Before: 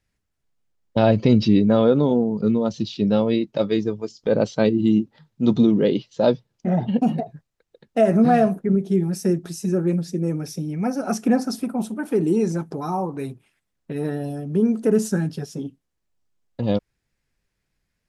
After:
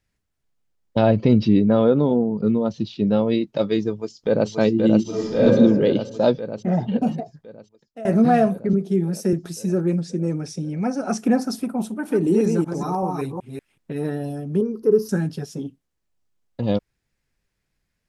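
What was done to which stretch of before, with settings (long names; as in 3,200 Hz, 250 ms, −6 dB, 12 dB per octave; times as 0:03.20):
0:01.01–0:03.32: low-pass filter 2,600 Hz 6 dB per octave
0:03.92–0:04.50: delay throw 530 ms, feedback 75%, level −3.5 dB
0:05.02–0:05.42: thrown reverb, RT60 1.6 s, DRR −12 dB
0:06.74–0:08.05: fade out, to −20.5 dB
0:08.73–0:09.33: elliptic high-pass filter 150 Hz
0:09.93–0:11.18: Butterworth low-pass 9,400 Hz
0:11.89–0:13.97: delay that plays each chunk backwards 189 ms, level −3.5 dB
0:14.61–0:15.09: drawn EQ curve 120 Hz 0 dB, 250 Hz −9 dB, 400 Hz +7 dB, 690 Hz −19 dB, 1,100 Hz 0 dB, 1,600 Hz −14 dB, 3,500 Hz −16 dB, 5,200 Hz 0 dB, 7,700 Hz −27 dB, 13,000 Hz +4 dB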